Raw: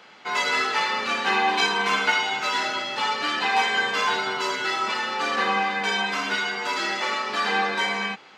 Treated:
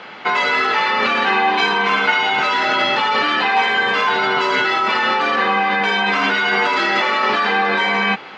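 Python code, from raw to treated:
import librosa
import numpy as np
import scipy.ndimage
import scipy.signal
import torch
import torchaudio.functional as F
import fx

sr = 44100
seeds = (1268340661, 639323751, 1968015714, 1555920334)

p1 = scipy.signal.sosfilt(scipy.signal.butter(2, 3300.0, 'lowpass', fs=sr, output='sos'), x)
p2 = fx.over_compress(p1, sr, threshold_db=-30.0, ratio=-0.5)
p3 = p1 + F.gain(torch.from_numpy(p2), 0.0).numpy()
y = F.gain(torch.from_numpy(p3), 5.0).numpy()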